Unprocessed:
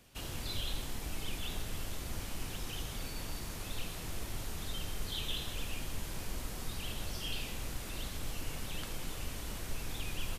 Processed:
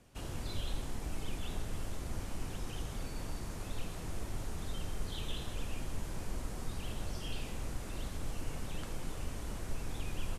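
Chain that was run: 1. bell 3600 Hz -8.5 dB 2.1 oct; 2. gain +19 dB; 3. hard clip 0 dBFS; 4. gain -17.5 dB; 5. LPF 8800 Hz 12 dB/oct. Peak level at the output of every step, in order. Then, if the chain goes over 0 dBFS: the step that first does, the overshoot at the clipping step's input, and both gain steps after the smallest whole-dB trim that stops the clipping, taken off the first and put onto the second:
-25.0, -6.0, -6.0, -23.5, -24.0 dBFS; no overload

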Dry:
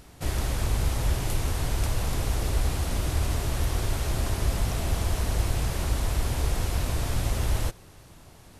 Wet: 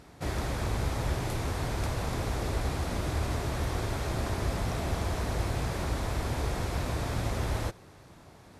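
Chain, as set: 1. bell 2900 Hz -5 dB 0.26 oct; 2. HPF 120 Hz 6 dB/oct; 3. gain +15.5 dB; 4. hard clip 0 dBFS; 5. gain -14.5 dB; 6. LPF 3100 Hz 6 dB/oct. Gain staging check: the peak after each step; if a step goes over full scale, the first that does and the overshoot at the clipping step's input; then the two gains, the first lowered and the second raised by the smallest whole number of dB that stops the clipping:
-12.5, -17.5, -2.0, -2.0, -16.5, -18.0 dBFS; no overload

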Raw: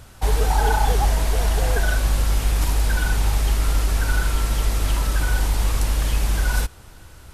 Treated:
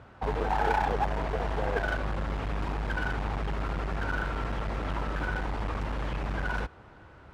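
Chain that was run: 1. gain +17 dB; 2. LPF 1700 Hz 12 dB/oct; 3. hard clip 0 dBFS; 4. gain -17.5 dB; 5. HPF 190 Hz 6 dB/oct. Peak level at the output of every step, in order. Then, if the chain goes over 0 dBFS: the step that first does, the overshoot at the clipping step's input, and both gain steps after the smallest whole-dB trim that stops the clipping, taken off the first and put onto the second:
+10.0, +9.5, 0.0, -17.5, -13.0 dBFS; step 1, 9.5 dB; step 1 +7 dB, step 4 -7.5 dB

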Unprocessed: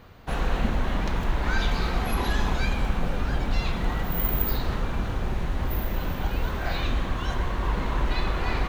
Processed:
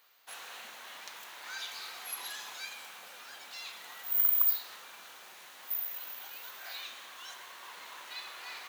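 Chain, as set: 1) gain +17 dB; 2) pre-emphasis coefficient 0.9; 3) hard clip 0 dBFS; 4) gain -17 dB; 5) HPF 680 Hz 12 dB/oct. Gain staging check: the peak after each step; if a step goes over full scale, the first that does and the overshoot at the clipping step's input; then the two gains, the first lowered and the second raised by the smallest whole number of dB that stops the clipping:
+7.5, +6.0, 0.0, -17.0, -15.0 dBFS; step 1, 6.0 dB; step 1 +11 dB, step 4 -11 dB

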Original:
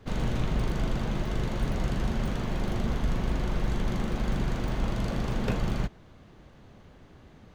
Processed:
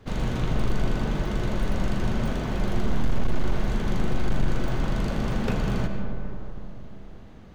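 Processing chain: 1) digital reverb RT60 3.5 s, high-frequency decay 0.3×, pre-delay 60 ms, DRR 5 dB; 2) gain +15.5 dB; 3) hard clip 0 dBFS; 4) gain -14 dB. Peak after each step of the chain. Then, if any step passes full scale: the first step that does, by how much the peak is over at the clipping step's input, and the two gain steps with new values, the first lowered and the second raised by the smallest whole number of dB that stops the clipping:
-10.0, +5.5, 0.0, -14.0 dBFS; step 2, 5.5 dB; step 2 +9.5 dB, step 4 -8 dB

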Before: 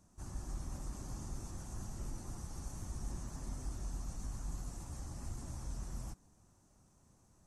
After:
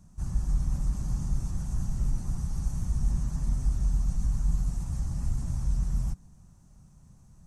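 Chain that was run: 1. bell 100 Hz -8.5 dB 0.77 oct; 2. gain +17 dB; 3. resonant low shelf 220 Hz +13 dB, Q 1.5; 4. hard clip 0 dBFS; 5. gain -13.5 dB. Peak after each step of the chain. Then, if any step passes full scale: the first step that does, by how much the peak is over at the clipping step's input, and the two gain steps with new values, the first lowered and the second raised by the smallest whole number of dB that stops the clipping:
-31.0, -14.0, -2.5, -2.5, -16.0 dBFS; no overload

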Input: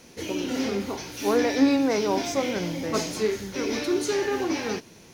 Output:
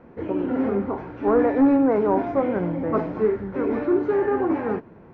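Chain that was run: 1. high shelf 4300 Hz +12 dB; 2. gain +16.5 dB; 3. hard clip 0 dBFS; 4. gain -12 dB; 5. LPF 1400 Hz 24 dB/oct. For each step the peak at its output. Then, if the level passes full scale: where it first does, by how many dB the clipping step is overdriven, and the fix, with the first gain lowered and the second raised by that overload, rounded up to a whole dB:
-8.0, +8.5, 0.0, -12.0, -11.0 dBFS; step 2, 8.5 dB; step 2 +7.5 dB, step 4 -3 dB

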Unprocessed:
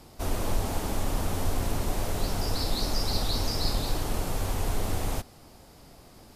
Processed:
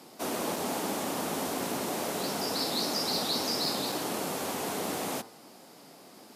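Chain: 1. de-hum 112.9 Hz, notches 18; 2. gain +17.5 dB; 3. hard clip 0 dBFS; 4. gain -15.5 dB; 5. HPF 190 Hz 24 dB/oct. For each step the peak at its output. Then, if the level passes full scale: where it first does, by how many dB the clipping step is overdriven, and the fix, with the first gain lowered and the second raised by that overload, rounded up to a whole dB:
-13.5, +4.0, 0.0, -15.5, -17.0 dBFS; step 2, 4.0 dB; step 2 +13.5 dB, step 4 -11.5 dB

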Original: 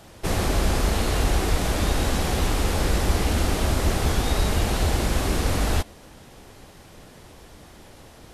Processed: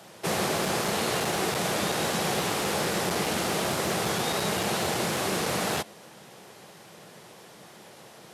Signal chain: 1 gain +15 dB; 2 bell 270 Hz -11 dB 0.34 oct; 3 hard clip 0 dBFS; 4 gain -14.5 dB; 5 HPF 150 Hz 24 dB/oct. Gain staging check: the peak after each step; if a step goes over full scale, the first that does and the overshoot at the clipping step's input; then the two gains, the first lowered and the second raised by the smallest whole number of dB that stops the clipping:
+6.5, +6.0, 0.0, -14.5, -14.5 dBFS; step 1, 6.0 dB; step 1 +9 dB, step 4 -8.5 dB

